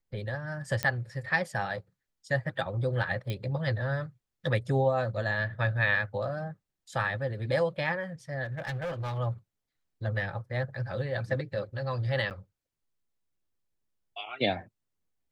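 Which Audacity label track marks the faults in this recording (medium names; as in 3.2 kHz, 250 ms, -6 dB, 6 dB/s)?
0.830000	0.830000	pop -12 dBFS
3.300000	3.300000	pop -21 dBFS
8.440000	9.190000	clipped -30.5 dBFS
12.300000	12.310000	dropout 8.7 ms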